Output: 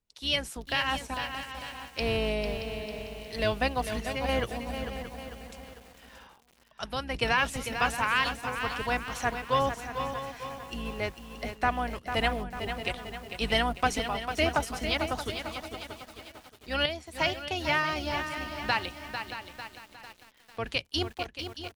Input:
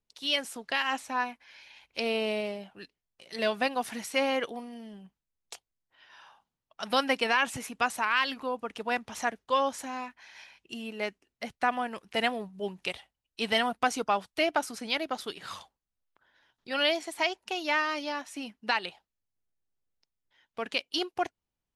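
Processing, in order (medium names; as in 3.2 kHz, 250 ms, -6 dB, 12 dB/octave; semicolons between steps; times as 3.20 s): octave divider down 2 oct, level +2 dB; square tremolo 0.7 Hz, depth 60%, duty 80%; on a send: feedback delay 627 ms, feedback 27%, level -12 dB; on the sum: bit-crushed delay 448 ms, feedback 55%, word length 8-bit, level -8 dB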